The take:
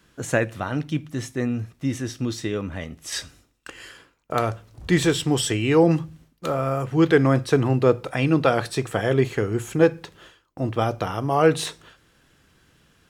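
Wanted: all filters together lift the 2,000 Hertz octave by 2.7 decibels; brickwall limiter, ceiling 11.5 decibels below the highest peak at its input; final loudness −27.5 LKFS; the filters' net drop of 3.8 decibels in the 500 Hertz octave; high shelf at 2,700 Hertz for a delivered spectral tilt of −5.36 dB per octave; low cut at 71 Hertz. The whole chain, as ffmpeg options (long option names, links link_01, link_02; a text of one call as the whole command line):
ffmpeg -i in.wav -af "highpass=71,equalizer=frequency=500:width_type=o:gain=-4.5,equalizer=frequency=2000:width_type=o:gain=6.5,highshelf=frequency=2700:gain=-7,volume=0.5dB,alimiter=limit=-14.5dB:level=0:latency=1" out.wav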